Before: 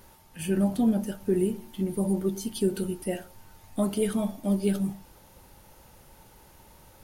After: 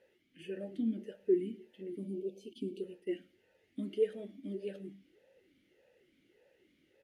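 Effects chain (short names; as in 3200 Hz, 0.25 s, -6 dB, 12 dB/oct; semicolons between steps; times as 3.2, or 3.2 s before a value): 2.53–3.07 expander -33 dBFS; 2.06–2.81 spectral delete 810–2200 Hz; on a send: echo 0.107 s -22.5 dB; on the sum: vowel sweep e-i 1.7 Hz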